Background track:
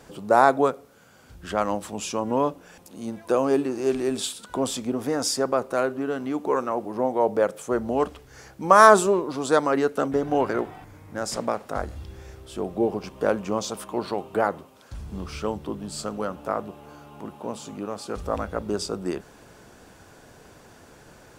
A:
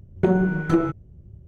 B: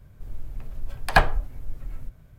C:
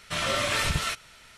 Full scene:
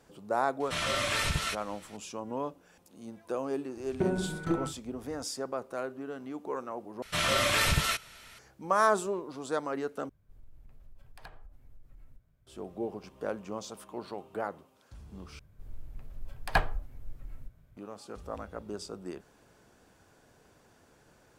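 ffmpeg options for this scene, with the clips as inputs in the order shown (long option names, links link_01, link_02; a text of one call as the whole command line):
ffmpeg -i bed.wav -i cue0.wav -i cue1.wav -i cue2.wav -filter_complex "[3:a]asplit=2[link_01][link_02];[2:a]asplit=2[link_03][link_04];[0:a]volume=-12dB[link_05];[1:a]asplit=2[link_06][link_07];[link_07]adelay=41,volume=-8dB[link_08];[link_06][link_08]amix=inputs=2:normalize=0[link_09];[link_02]equalizer=frequency=12000:width_type=o:width=0.22:gain=7[link_10];[link_03]acompressor=threshold=-27dB:ratio=6:attack=3.2:release=140:knee=1:detection=peak[link_11];[link_05]asplit=4[link_12][link_13][link_14][link_15];[link_12]atrim=end=7.024[link_16];[link_10]atrim=end=1.37[link_17];[link_13]atrim=start=8.386:end=10.094[link_18];[link_11]atrim=end=2.38,asetpts=PTS-STARTPTS,volume=-18dB[link_19];[link_14]atrim=start=12.466:end=15.394[link_20];[link_04]atrim=end=2.38,asetpts=PTS-STARTPTS,volume=-9dB[link_21];[link_15]atrim=start=17.766[link_22];[link_01]atrim=end=1.37,asetpts=PTS-STARTPTS,volume=-3.5dB,afade=type=in:duration=0.004:curve=hsin,afade=type=out:start_time=1.366:duration=0.004:curve=hsin,adelay=600[link_23];[link_09]atrim=end=1.47,asetpts=PTS-STARTPTS,volume=-10dB,afade=type=in:duration=0.004:curve=hsin,afade=type=out:start_time=1.466:duration=0.004:curve=hsin,adelay=166257S[link_24];[link_16][link_17]acrossfade=duration=0.004:curve1=hsin:curve2=hsin[link_25];[link_25][link_18]acrossfade=duration=0.004:curve1=hsin:curve2=hsin[link_26];[link_26][link_19]acrossfade=duration=0.004:curve1=hsin:curve2=hsin[link_27];[link_27][link_20]acrossfade=duration=0.004:curve1=hsin:curve2=hsin[link_28];[link_28][link_21]acrossfade=duration=0.004:curve1=hsin:curve2=hsin[link_29];[link_29][link_22]acrossfade=duration=0.004:curve1=hsin:curve2=hsin[link_30];[link_30][link_23][link_24]amix=inputs=3:normalize=0" out.wav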